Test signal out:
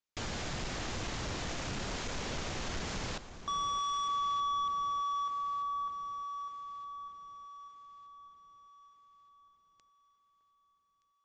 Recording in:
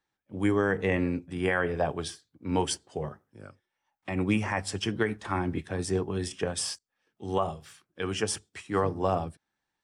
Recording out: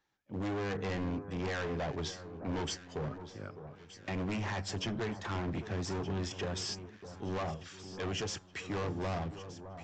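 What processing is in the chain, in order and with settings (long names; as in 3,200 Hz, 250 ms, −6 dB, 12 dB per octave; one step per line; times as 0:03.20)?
dynamic equaliser 120 Hz, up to +3 dB, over −39 dBFS, Q 0.78
in parallel at +1.5 dB: downward compressor, threshold −39 dBFS
on the sum: gain into a clipping stage and back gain 28.5 dB
downsampling to 16,000 Hz
delay that swaps between a low-pass and a high-pass 611 ms, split 1,400 Hz, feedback 66%, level −11.5 dB
level −4.5 dB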